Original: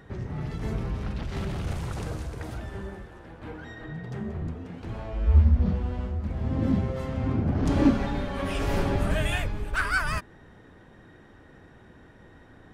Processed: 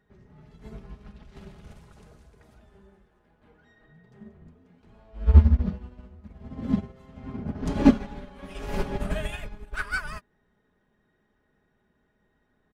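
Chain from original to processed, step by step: comb 4.8 ms, depth 48%; upward expansion 2.5:1, over -32 dBFS; trim +7.5 dB

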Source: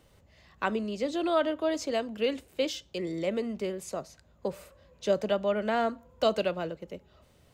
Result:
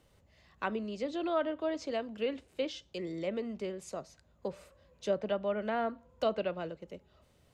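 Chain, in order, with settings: low-pass that closes with the level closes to 2.7 kHz, closed at -23.5 dBFS; trim -5 dB

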